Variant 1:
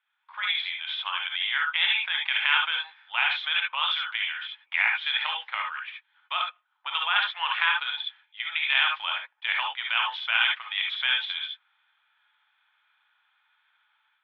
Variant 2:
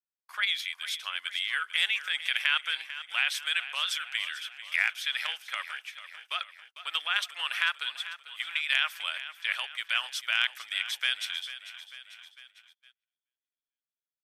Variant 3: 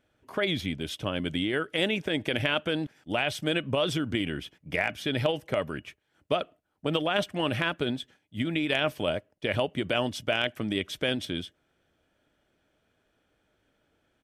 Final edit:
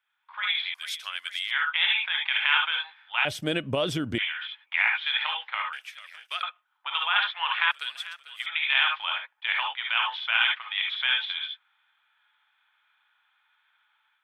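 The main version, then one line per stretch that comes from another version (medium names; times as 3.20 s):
1
0.74–1.51 s: from 2
3.25–4.18 s: from 3
5.73–6.43 s: from 2
7.71–8.46 s: from 2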